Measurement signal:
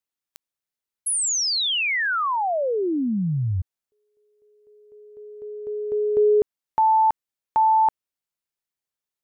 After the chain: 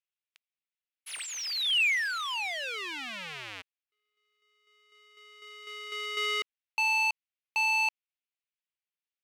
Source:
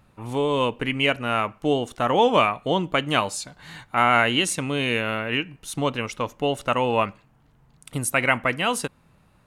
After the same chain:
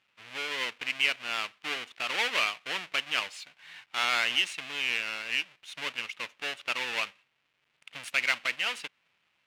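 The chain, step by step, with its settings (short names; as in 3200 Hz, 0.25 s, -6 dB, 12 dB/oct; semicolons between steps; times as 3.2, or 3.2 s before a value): half-waves squared off; band-pass 2600 Hz, Q 2.2; gain -3 dB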